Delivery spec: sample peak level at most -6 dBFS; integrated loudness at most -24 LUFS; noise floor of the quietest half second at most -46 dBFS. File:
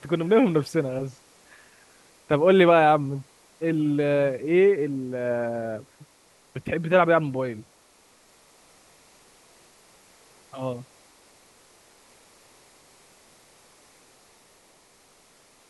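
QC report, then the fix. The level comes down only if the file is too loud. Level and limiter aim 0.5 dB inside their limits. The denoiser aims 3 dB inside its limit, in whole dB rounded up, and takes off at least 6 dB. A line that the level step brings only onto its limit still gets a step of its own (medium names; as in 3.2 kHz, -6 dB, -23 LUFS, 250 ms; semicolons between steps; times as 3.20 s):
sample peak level -5.5 dBFS: fail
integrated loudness -23.0 LUFS: fail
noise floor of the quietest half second -58 dBFS: pass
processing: trim -1.5 dB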